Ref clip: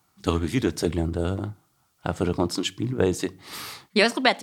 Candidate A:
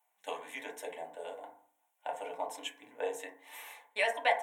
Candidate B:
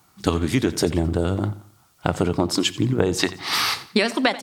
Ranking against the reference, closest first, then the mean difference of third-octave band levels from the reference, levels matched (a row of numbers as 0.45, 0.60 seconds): B, A; 4.0, 10.0 decibels